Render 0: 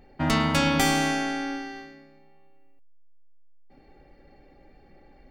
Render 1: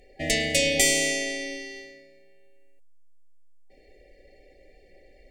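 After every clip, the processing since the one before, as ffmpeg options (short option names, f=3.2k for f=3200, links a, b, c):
-af "afftfilt=real='re*(1-between(b*sr/4096,780,1700))':imag='im*(1-between(b*sr/4096,780,1700))':win_size=4096:overlap=0.75,equalizer=f=125:t=o:w=1:g=-11,equalizer=f=250:t=o:w=1:g=-9,equalizer=f=500:t=o:w=1:g=9,equalizer=f=1k:t=o:w=1:g=-10,equalizer=f=2k:t=o:w=1:g=5,equalizer=f=8k:t=o:w=1:g=12"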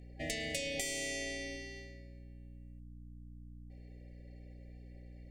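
-af "aeval=exprs='val(0)+0.00891*(sin(2*PI*60*n/s)+sin(2*PI*2*60*n/s)/2+sin(2*PI*3*60*n/s)/3+sin(2*PI*4*60*n/s)/4+sin(2*PI*5*60*n/s)/5)':c=same,acompressor=threshold=-25dB:ratio=10,volume=-9dB"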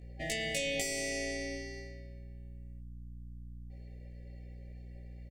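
-filter_complex "[0:a]asplit=2[a][b];[b]adelay=18,volume=-2dB[c];[a][c]amix=inputs=2:normalize=0"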